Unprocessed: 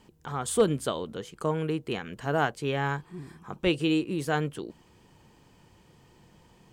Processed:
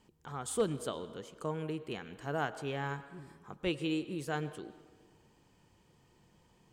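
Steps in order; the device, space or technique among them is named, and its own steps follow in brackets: bell 7300 Hz +2 dB; filtered reverb send (on a send: HPF 230 Hz 24 dB/oct + LPF 5800 Hz + reverb RT60 1.6 s, pre-delay 93 ms, DRR 14 dB); on the sum: gain -8.5 dB

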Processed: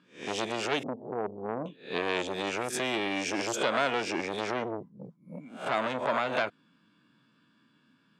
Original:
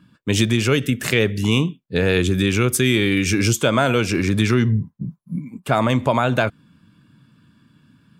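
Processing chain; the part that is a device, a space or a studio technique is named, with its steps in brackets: spectral swells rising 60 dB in 0.35 s; 0.83–1.66 Chebyshev low-pass 860 Hz, order 6; public-address speaker with an overloaded transformer (core saturation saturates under 1200 Hz; BPF 310–6200 Hz); gain -7 dB

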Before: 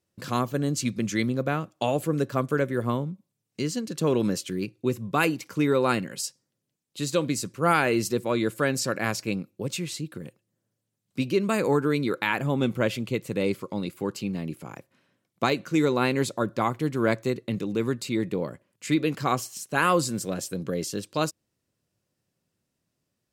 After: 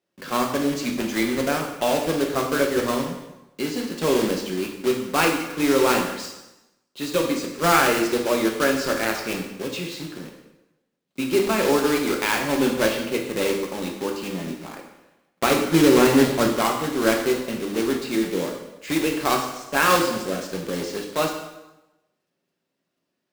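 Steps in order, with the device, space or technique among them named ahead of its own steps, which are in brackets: 15.5–16.48 RIAA curve playback; HPF 57 Hz 12 dB/oct; early digital voice recorder (BPF 250–4000 Hz; block floating point 3-bit); plate-style reverb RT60 0.95 s, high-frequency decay 0.9×, DRR 1 dB; gain +2 dB

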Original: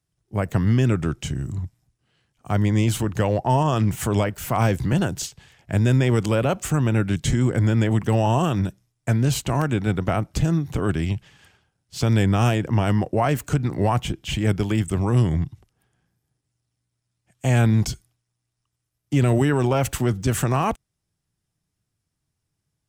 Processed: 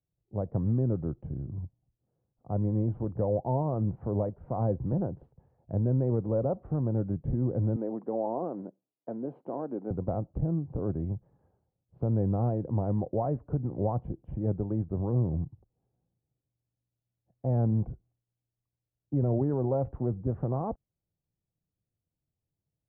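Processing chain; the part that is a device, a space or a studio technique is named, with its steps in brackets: under water (LPF 810 Hz 24 dB/oct; bell 520 Hz +6 dB 0.22 oct); 7.76–9.91 HPF 240 Hz 24 dB/oct; gain -8.5 dB

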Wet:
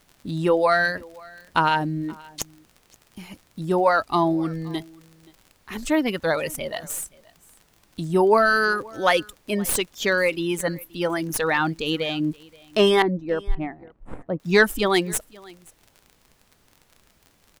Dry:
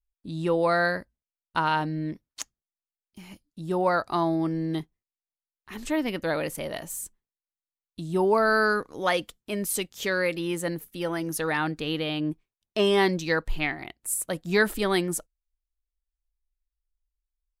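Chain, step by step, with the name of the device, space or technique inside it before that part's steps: reverb removal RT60 1.5 s; record under a worn stylus (tracing distortion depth 0.035 ms; crackle 40/s -42 dBFS; pink noise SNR 37 dB); 13.02–14.4 Bessel low-pass 580 Hz, order 2; echo 0.526 s -24 dB; gain +6 dB

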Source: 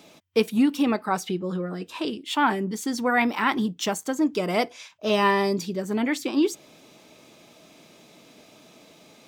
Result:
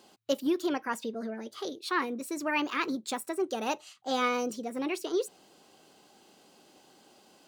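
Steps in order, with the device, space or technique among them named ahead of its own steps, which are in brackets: nightcore (varispeed +24%); gain -7.5 dB

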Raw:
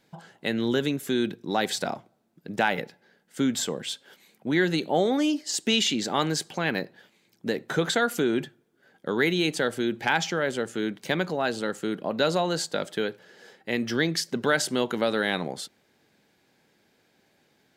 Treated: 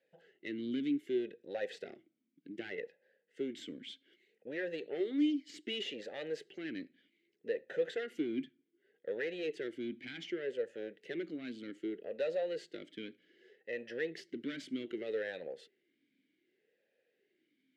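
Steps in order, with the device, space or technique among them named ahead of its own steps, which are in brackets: talk box (tube stage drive 20 dB, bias 0.55; vowel sweep e-i 0.65 Hz); gain +1 dB

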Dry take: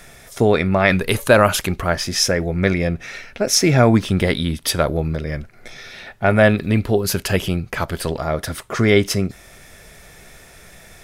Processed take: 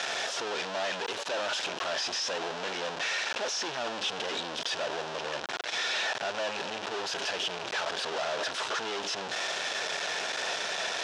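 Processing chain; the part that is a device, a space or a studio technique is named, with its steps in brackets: home computer beeper (infinite clipping; speaker cabinet 640–5400 Hz, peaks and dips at 1200 Hz -5 dB, 2100 Hz -9 dB, 4500 Hz -4 dB); gain -6.5 dB

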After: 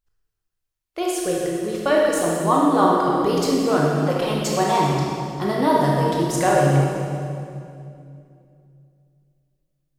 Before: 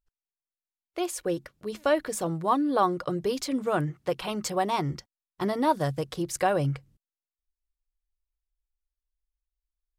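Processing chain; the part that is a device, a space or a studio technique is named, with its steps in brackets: stairwell (reverb RT60 2.5 s, pre-delay 17 ms, DRR -3.5 dB); gain +3 dB

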